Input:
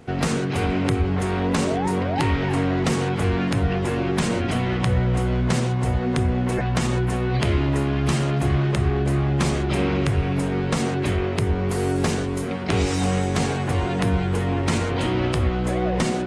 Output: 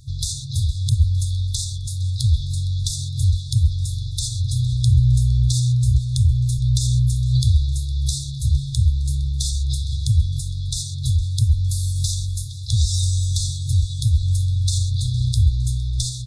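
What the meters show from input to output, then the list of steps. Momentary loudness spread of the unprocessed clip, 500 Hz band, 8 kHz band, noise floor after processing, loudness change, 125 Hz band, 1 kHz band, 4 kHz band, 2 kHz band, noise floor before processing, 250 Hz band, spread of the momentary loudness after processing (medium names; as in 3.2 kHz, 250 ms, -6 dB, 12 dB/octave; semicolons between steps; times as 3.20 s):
2 LU, under -40 dB, +7.0 dB, -29 dBFS, +1.5 dB, +4.5 dB, under -40 dB, +4.0 dB, under -40 dB, -25 dBFS, under -10 dB, 7 LU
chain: frequency-shifting echo 460 ms, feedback 54%, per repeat +62 Hz, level -20 dB; FFT band-reject 130–3400 Hz; trim +7 dB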